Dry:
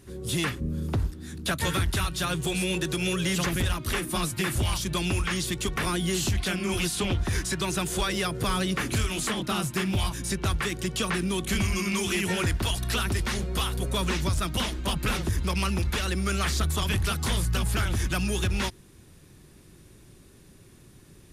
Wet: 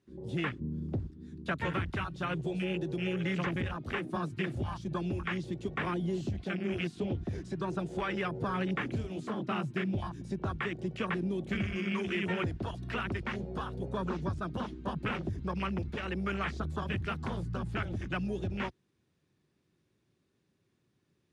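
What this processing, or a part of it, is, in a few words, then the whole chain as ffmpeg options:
over-cleaned archive recording: -af "highpass=110,lowpass=5200,afwtdn=0.0282,volume=-4dB"

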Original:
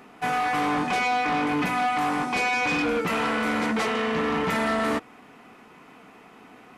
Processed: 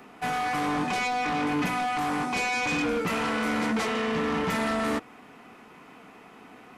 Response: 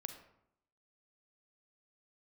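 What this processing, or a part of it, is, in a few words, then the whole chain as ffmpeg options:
one-band saturation: -filter_complex "[0:a]acrossover=split=260|4200[link_01][link_02][link_03];[link_02]asoftclip=type=tanh:threshold=-24.5dB[link_04];[link_01][link_04][link_03]amix=inputs=3:normalize=0"

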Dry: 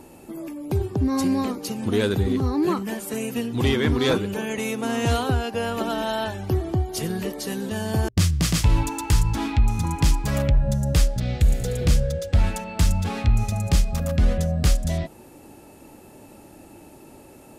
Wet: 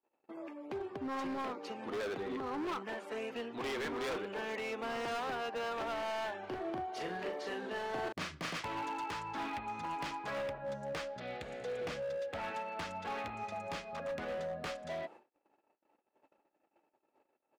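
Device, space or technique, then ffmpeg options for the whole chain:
walkie-talkie: -filter_complex "[0:a]highpass=540,lowpass=2200,asoftclip=type=hard:threshold=-31.5dB,agate=range=-41dB:threshold=-49dB:ratio=16:detection=peak,asplit=3[link_01][link_02][link_03];[link_01]afade=type=out:start_time=6.42:duration=0.02[link_04];[link_02]asplit=2[link_05][link_06];[link_06]adelay=39,volume=-4dB[link_07];[link_05][link_07]amix=inputs=2:normalize=0,afade=type=in:start_time=6.42:duration=0.02,afade=type=out:start_time=8.55:duration=0.02[link_08];[link_03]afade=type=in:start_time=8.55:duration=0.02[link_09];[link_04][link_08][link_09]amix=inputs=3:normalize=0,volume=-3.5dB"

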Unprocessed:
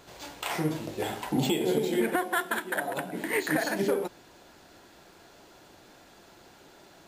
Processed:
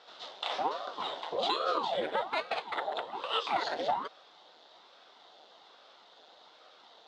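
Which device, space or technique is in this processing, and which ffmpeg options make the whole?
voice changer toy: -af "aeval=exprs='val(0)*sin(2*PI*490*n/s+490*0.85/1.2*sin(2*PI*1.2*n/s))':channel_layout=same,highpass=590,equalizer=frequency=720:width_type=q:width=4:gain=4,equalizer=frequency=1100:width_type=q:width=4:gain=-4,equalizer=frequency=1700:width_type=q:width=4:gain=-7,equalizer=frequency=2400:width_type=q:width=4:gain=-9,equalizer=frequency=3600:width_type=q:width=4:gain=8,lowpass=frequency=4600:width=0.5412,lowpass=frequency=4600:width=1.3066,volume=2.5dB"

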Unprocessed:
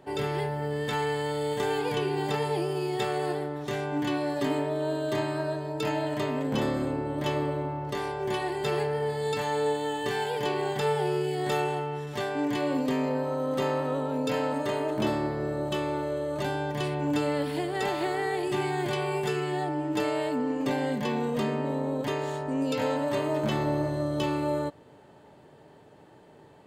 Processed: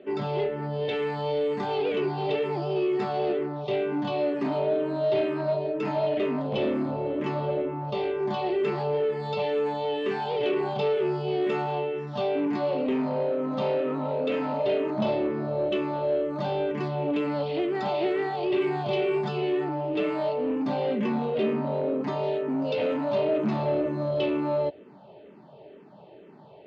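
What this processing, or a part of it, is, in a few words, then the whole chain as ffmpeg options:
barber-pole phaser into a guitar amplifier: -filter_complex "[0:a]asplit=2[link_01][link_02];[link_02]afreqshift=-2.1[link_03];[link_01][link_03]amix=inputs=2:normalize=1,asoftclip=type=tanh:threshold=-28dB,highpass=100,equalizer=frequency=100:width_type=q:width=4:gain=-7,equalizer=frequency=200:width_type=q:width=4:gain=9,equalizer=frequency=390:width_type=q:width=4:gain=6,equalizer=frequency=620:width_type=q:width=4:gain=7,equalizer=frequency=1700:width_type=q:width=4:gain=-6,equalizer=frequency=2600:width_type=q:width=4:gain=4,lowpass=frequency=4300:width=0.5412,lowpass=frequency=4300:width=1.3066,volume=3.5dB"

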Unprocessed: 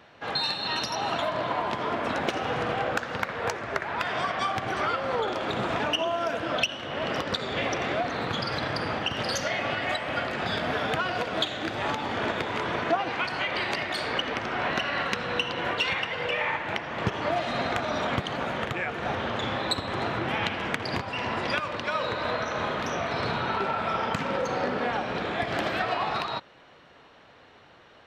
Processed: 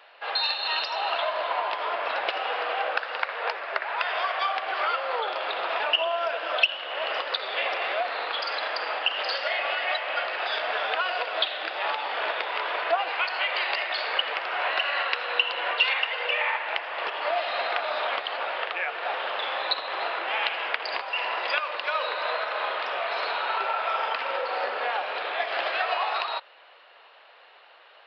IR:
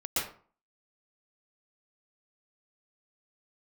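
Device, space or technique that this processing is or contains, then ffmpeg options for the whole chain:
musical greeting card: -af "aresample=11025,aresample=44100,highpass=frequency=540:width=0.5412,highpass=frequency=540:width=1.3066,equalizer=frequency=2700:width_type=o:width=0.25:gain=5,volume=1.5dB"

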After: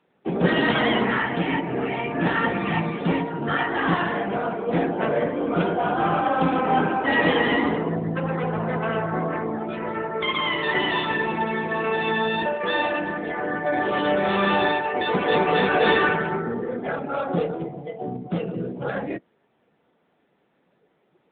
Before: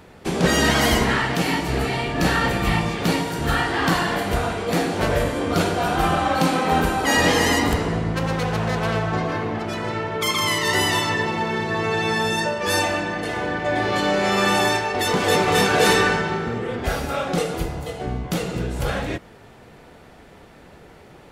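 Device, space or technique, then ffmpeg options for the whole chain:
mobile call with aggressive noise cancelling: -af "highpass=frequency=150:width=0.5412,highpass=frequency=150:width=1.3066,afftdn=noise_reduction=18:noise_floor=-29" -ar 8000 -c:a libopencore_amrnb -b:a 10200

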